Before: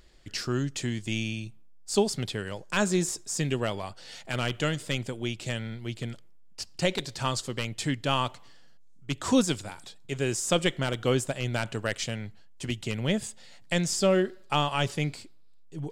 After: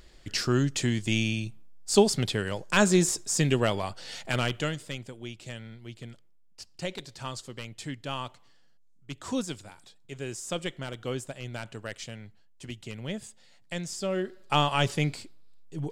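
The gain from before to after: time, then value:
4.28 s +4 dB
5 s -8 dB
14.08 s -8 dB
14.57 s +2 dB

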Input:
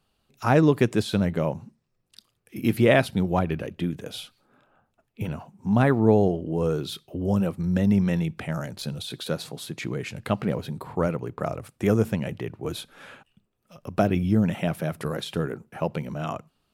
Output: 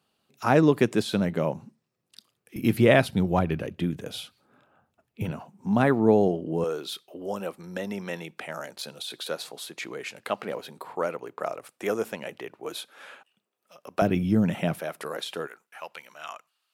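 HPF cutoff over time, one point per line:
160 Hz
from 2.56 s 60 Hz
from 5.31 s 170 Hz
from 6.64 s 460 Hz
from 14.02 s 120 Hz
from 14.79 s 460 Hz
from 15.47 s 1300 Hz

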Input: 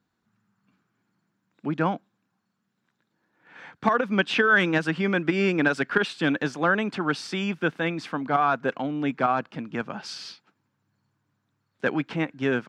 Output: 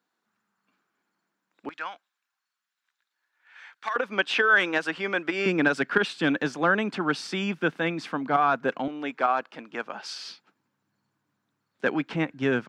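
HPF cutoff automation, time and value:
390 Hz
from 1.69 s 1500 Hz
from 3.96 s 430 Hz
from 5.46 s 150 Hz
from 8.88 s 420 Hz
from 10.26 s 180 Hz
from 12.14 s 44 Hz

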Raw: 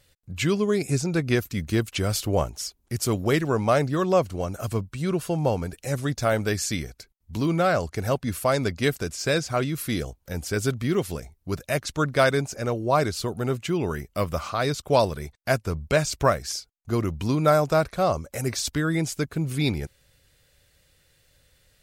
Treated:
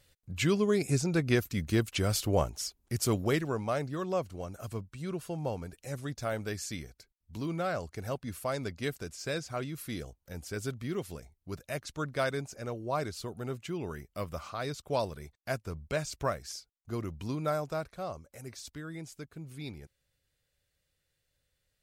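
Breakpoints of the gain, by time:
3.14 s -4 dB
3.67 s -11 dB
17.31 s -11 dB
18.38 s -17.5 dB

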